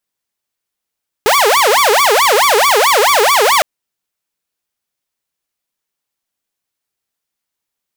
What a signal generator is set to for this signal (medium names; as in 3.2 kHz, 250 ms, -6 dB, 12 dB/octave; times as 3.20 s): siren wail 406–1160 Hz 4.6 per s saw -5.5 dBFS 2.36 s